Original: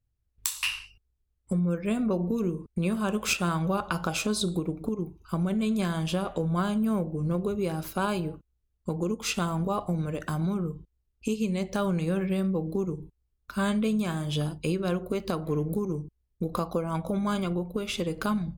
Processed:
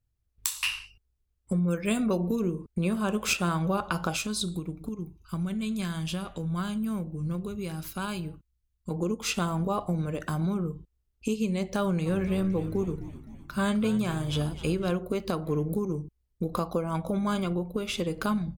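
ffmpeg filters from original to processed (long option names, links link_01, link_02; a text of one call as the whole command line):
ffmpeg -i in.wav -filter_complex "[0:a]asettb=1/sr,asplit=3[link_01][link_02][link_03];[link_01]atrim=end=1.684[link_04];[link_02]atrim=start=1.68:end=2.36,asetpts=PTS-STARTPTS,afade=type=in:duration=0.004:curve=qsin,afade=type=out:start_time=0.676:duration=0.004:curve=qsin,highshelf=frequency=2200:gain=10.5[link_05];[link_03]atrim=start=2.356[link_06];[link_04][link_05]acrossfade=duration=0.004:curve1=hsin:curve2=qsin[link_07];[link_07][link_06]acrossfade=duration=0.004:curve1=qsin:curve2=hsin,asettb=1/sr,asplit=3[link_08][link_09][link_10];[link_08]atrim=end=4.164[link_11];[link_09]atrim=start=4.16:end=8.91,asetpts=PTS-STARTPTS,afade=type=in:duration=0.004:curve=qsin,afade=type=out:start_time=4.746:duration=0.004:curve=qsin,equalizer=frequency=560:width_type=o:width=2.2:gain=-10.5[link_12];[link_10]atrim=start=8.906[link_13];[link_11][link_12]acrossfade=duration=0.004:curve1=hsin:curve2=qsin[link_14];[link_14][link_13]acrossfade=duration=0.004:curve1=qsin:curve2=hsin,asplit=3[link_15][link_16][link_17];[link_15]afade=type=out:start_time=12.05:duration=0.02[link_18];[link_16]asplit=8[link_19][link_20][link_21][link_22][link_23][link_24][link_25][link_26];[link_20]adelay=257,afreqshift=-85,volume=-14dB[link_27];[link_21]adelay=514,afreqshift=-170,volume=-18.3dB[link_28];[link_22]adelay=771,afreqshift=-255,volume=-22.6dB[link_29];[link_23]adelay=1028,afreqshift=-340,volume=-26.9dB[link_30];[link_24]adelay=1285,afreqshift=-425,volume=-31.2dB[link_31];[link_25]adelay=1542,afreqshift=-510,volume=-35.5dB[link_32];[link_26]adelay=1799,afreqshift=-595,volume=-39.8dB[link_33];[link_19][link_27][link_28][link_29][link_30][link_31][link_32][link_33]amix=inputs=8:normalize=0,afade=type=in:start_time=12.05:duration=0.02,afade=type=out:start_time=14.9:duration=0.02[link_34];[link_17]afade=type=in:start_time=14.9:duration=0.02[link_35];[link_18][link_34][link_35]amix=inputs=3:normalize=0" out.wav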